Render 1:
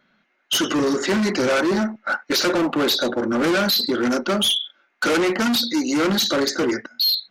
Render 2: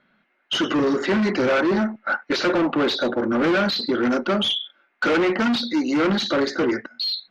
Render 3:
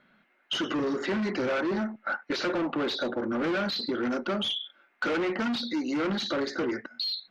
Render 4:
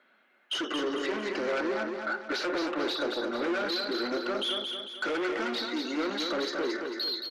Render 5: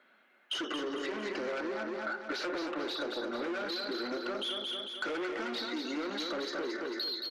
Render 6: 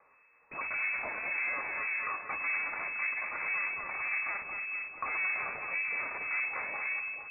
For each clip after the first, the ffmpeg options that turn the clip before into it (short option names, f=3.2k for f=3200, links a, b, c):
-af "lowpass=3.3k"
-af "acompressor=threshold=-34dB:ratio=2"
-af "highpass=f=300:w=0.5412,highpass=f=300:w=1.3066,asoftclip=type=tanh:threshold=-24.5dB,aecho=1:1:224|448|672|896|1120|1344:0.562|0.259|0.119|0.0547|0.0252|0.0116"
-af "acompressor=threshold=-33dB:ratio=6"
-filter_complex "[0:a]aeval=exprs='max(val(0),0)':c=same,lowpass=f=2.2k:t=q:w=0.5098,lowpass=f=2.2k:t=q:w=0.6013,lowpass=f=2.2k:t=q:w=0.9,lowpass=f=2.2k:t=q:w=2.563,afreqshift=-2600,acrossover=split=1500[a][b];[a]aeval=exprs='val(0)*(1-0.7/2+0.7/2*cos(2*PI*1.8*n/s))':c=same[c];[b]aeval=exprs='val(0)*(1-0.7/2-0.7/2*cos(2*PI*1.8*n/s))':c=same[d];[c][d]amix=inputs=2:normalize=0,volume=8dB"